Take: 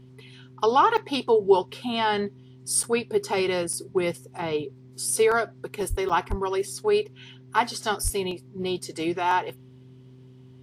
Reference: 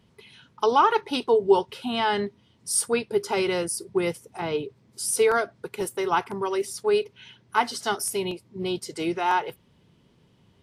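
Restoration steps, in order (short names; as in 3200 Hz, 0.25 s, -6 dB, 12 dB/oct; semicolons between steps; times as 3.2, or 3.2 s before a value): de-hum 128.1 Hz, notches 3; 5.89–6.01 HPF 140 Hz 24 dB/oct; 6.29–6.41 HPF 140 Hz 24 dB/oct; 8.03–8.15 HPF 140 Hz 24 dB/oct; interpolate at 0.97/2.83/3.73/6.09, 5.7 ms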